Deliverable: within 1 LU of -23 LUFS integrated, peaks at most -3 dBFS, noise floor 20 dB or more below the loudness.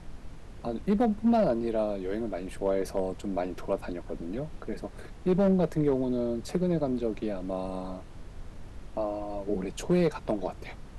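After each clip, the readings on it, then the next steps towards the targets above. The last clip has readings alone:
clipped 0.5%; flat tops at -17.5 dBFS; noise floor -46 dBFS; noise floor target -50 dBFS; loudness -30.0 LUFS; peak -17.5 dBFS; loudness target -23.0 LUFS
-> clip repair -17.5 dBFS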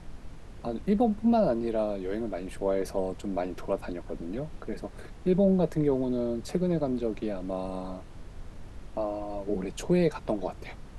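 clipped 0.0%; noise floor -46 dBFS; noise floor target -50 dBFS
-> noise print and reduce 6 dB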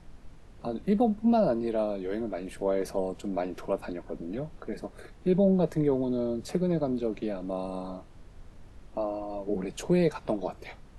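noise floor -51 dBFS; loudness -29.5 LUFS; peak -13.0 dBFS; loudness target -23.0 LUFS
-> gain +6.5 dB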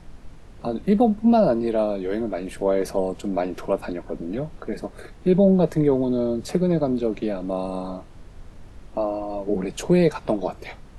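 loudness -23.0 LUFS; peak -6.5 dBFS; noise floor -45 dBFS

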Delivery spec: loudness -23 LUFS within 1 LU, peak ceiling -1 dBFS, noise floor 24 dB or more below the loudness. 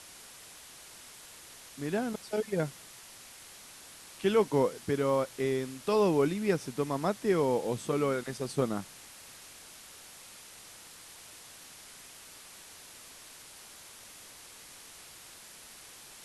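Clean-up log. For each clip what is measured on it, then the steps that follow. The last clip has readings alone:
noise floor -51 dBFS; noise floor target -55 dBFS; loudness -30.5 LUFS; peak -14.0 dBFS; loudness target -23.0 LUFS
-> denoiser 6 dB, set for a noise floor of -51 dBFS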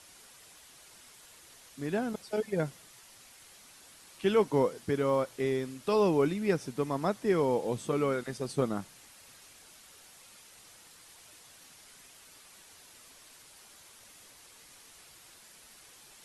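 noise floor -56 dBFS; loudness -30.5 LUFS; peak -14.0 dBFS; loudness target -23.0 LUFS
-> gain +7.5 dB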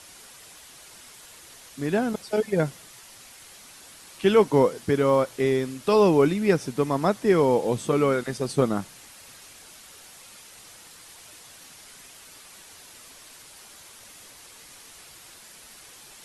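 loudness -23.0 LUFS; peak -6.5 dBFS; noise floor -48 dBFS

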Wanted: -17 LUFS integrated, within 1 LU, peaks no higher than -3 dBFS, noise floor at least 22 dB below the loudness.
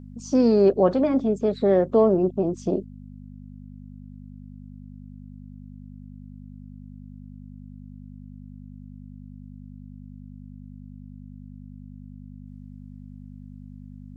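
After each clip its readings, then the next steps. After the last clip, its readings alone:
hum 50 Hz; harmonics up to 250 Hz; hum level -39 dBFS; loudness -21.0 LUFS; peak -6.5 dBFS; loudness target -17.0 LUFS
-> de-hum 50 Hz, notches 5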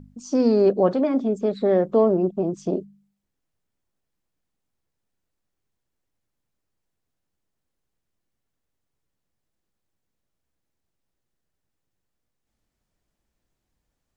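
hum none; loudness -21.5 LUFS; peak -6.5 dBFS; loudness target -17.0 LUFS
-> gain +4.5 dB; limiter -3 dBFS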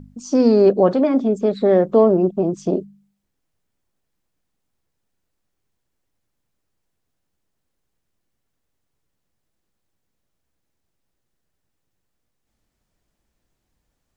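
loudness -17.0 LUFS; peak -3.0 dBFS; noise floor -76 dBFS

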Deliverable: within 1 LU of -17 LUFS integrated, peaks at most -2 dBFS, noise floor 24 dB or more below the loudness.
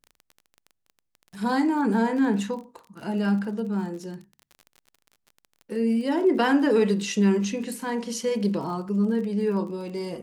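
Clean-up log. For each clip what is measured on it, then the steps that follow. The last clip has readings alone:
ticks 31/s; loudness -25.0 LUFS; peak -10.5 dBFS; loudness target -17.0 LUFS
-> de-click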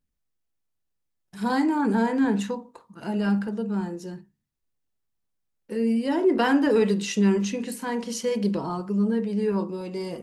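ticks 0/s; loudness -25.0 LUFS; peak -10.5 dBFS; loudness target -17.0 LUFS
-> gain +8 dB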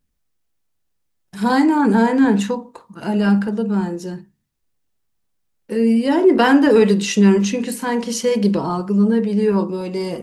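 loudness -17.0 LUFS; peak -2.5 dBFS; noise floor -70 dBFS

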